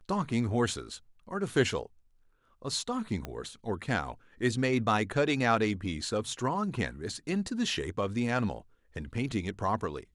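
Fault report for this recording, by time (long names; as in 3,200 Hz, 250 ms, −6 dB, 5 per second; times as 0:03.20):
0:03.25: click −22 dBFS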